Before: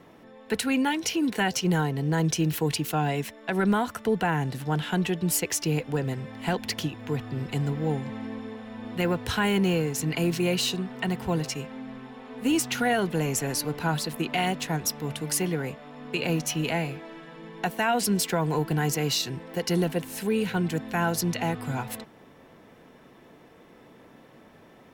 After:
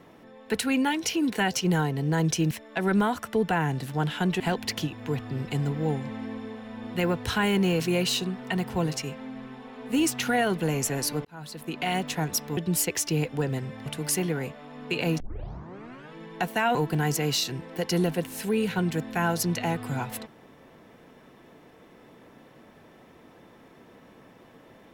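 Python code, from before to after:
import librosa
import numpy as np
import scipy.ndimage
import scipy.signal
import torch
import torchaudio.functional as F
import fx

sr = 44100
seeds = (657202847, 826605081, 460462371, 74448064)

y = fx.edit(x, sr, fx.cut(start_s=2.51, length_s=0.72),
    fx.move(start_s=5.12, length_s=1.29, to_s=15.09),
    fx.cut(start_s=9.81, length_s=0.51),
    fx.fade_in_span(start_s=13.77, length_s=0.79),
    fx.tape_start(start_s=16.43, length_s=0.93),
    fx.cut(start_s=17.98, length_s=0.55), tone=tone)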